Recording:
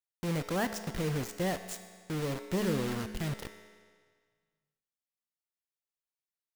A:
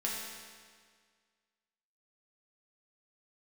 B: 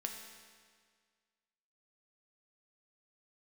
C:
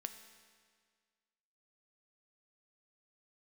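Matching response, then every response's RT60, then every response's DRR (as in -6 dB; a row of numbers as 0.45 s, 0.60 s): C; 1.8 s, 1.8 s, 1.8 s; -5.0 dB, 2.0 dB, 7.5 dB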